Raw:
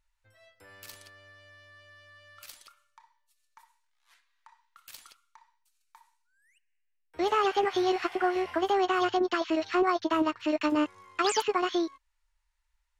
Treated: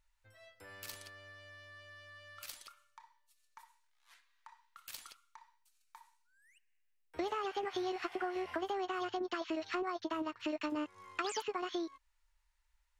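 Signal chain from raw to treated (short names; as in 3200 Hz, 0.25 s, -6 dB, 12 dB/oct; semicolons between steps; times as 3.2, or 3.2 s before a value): compressor 6:1, threshold -35 dBFS, peak gain reduction 13.5 dB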